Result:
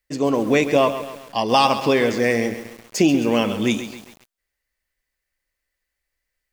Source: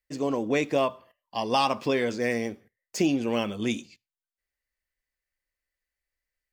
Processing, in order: bit-crushed delay 134 ms, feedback 55%, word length 7-bit, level -11 dB; trim +7.5 dB

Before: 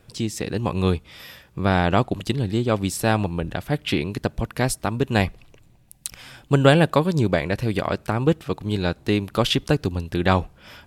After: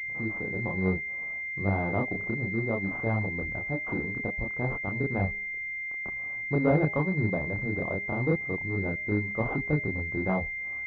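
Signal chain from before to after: de-hum 203.7 Hz, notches 4; chorus voices 2, 0.3 Hz, delay 29 ms, depth 3 ms; class-D stage that switches slowly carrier 2.1 kHz; trim -5 dB

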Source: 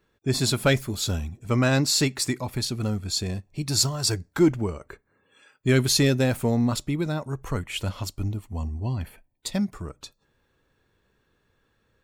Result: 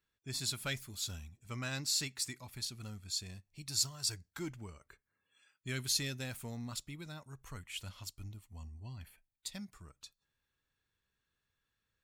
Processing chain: amplifier tone stack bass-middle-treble 5-5-5; trim -3.5 dB

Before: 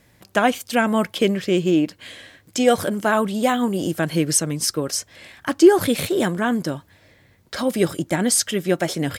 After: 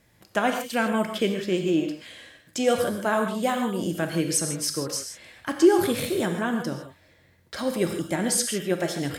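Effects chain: gated-style reverb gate 180 ms flat, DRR 4.5 dB; trim -6 dB

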